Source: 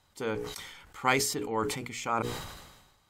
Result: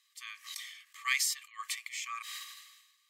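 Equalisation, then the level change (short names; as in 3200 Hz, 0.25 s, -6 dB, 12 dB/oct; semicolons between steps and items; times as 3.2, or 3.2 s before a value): brick-wall FIR high-pass 1100 Hz; Butterworth band-stop 1400 Hz, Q 2.6; 0.0 dB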